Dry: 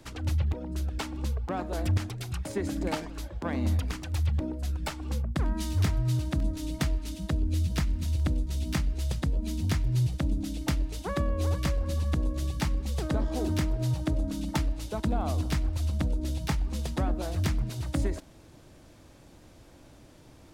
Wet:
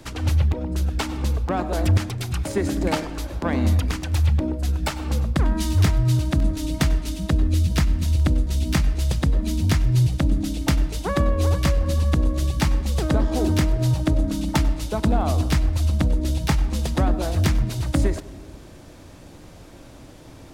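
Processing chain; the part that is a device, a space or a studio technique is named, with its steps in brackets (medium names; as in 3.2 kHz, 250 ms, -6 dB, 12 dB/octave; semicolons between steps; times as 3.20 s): compressed reverb return (on a send at -4.5 dB: reverberation RT60 0.90 s, pre-delay 91 ms + compression, threshold -38 dBFS, peak gain reduction 16.5 dB); on the sum: trim +8 dB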